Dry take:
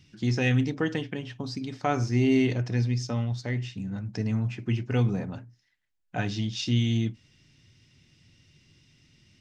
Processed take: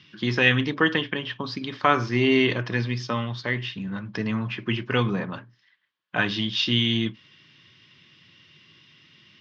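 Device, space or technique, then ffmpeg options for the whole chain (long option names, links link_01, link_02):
kitchen radio: -af "highpass=210,equalizer=frequency=260:width_type=q:width=4:gain=-6,equalizer=frequency=450:width_type=q:width=4:gain=-3,equalizer=frequency=740:width_type=q:width=4:gain=-7,equalizer=frequency=1100:width_type=q:width=4:gain=10,equalizer=frequency=1700:width_type=q:width=4:gain=5,equalizer=frequency=3200:width_type=q:width=4:gain=7,lowpass=frequency=4500:width=0.5412,lowpass=frequency=4500:width=1.3066,volume=7.5dB"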